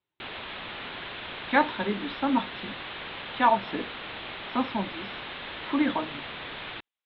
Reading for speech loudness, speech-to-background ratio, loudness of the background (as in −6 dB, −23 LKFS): −28.0 LKFS, 9.0 dB, −37.0 LKFS